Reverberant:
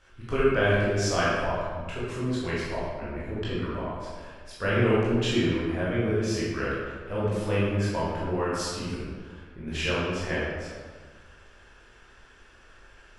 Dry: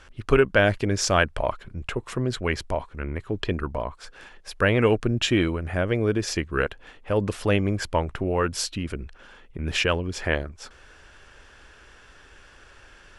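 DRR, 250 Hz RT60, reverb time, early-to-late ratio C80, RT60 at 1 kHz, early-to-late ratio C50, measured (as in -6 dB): -9.0 dB, 1.7 s, 1.6 s, 0.5 dB, 1.6 s, -2.5 dB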